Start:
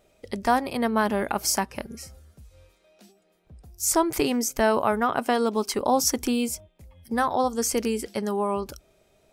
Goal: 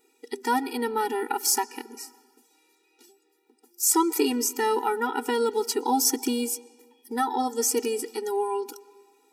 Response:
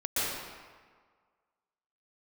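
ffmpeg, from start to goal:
-filter_complex "[0:a]highshelf=f=6000:g=7,asplit=2[s0][s1];[1:a]atrim=start_sample=2205,lowpass=6500[s2];[s1][s2]afir=irnorm=-1:irlink=0,volume=0.0355[s3];[s0][s3]amix=inputs=2:normalize=0,afftfilt=real='re*eq(mod(floor(b*sr/1024/250),2),1)':imag='im*eq(mod(floor(b*sr/1024/250),2),1)':win_size=1024:overlap=0.75,volume=1.12"

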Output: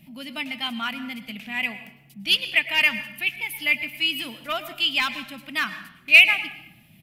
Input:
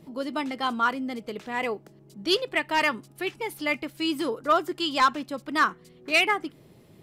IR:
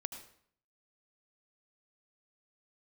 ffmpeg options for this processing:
-filter_complex "[0:a]firequalizer=gain_entry='entry(130,0);entry(210,4);entry(410,-23);entry(660,-4);entry(1100,-10);entry(2500,14);entry(4000,1);entry(7300,-2);entry(12000,11)':delay=0.05:min_phase=1,asplit=2[s0][s1];[1:a]atrim=start_sample=2205,asetrate=32193,aresample=44100[s2];[s1][s2]afir=irnorm=-1:irlink=0,volume=1.06[s3];[s0][s3]amix=inputs=2:normalize=0,volume=0.447"

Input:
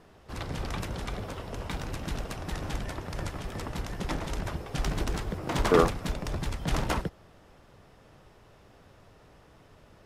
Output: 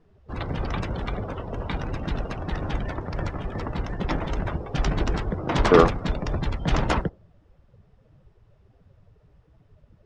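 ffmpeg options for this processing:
-af "adynamicsmooth=sensitivity=4.5:basefreq=7000,afftdn=nr=18:nf=-45,volume=2"

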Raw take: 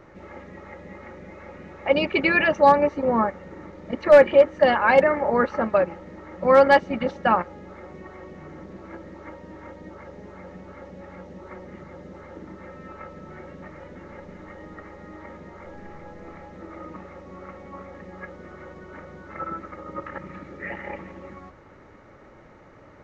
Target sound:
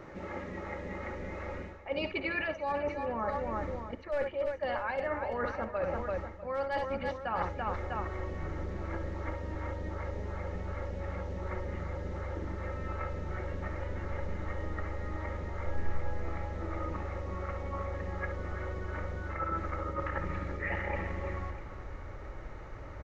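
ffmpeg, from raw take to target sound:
-af "aecho=1:1:56|67|337|649:0.141|0.237|0.237|0.133,areverse,acompressor=threshold=0.0282:ratio=16,areverse,asubboost=boost=9:cutoff=65,volume=1.19"

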